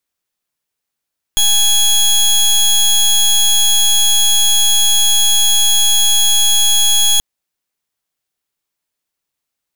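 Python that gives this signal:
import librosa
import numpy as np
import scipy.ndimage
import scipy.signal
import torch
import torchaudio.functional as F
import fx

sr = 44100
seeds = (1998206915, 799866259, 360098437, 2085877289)

y = fx.pulse(sr, length_s=5.83, hz=3330.0, level_db=-11.0, duty_pct=20)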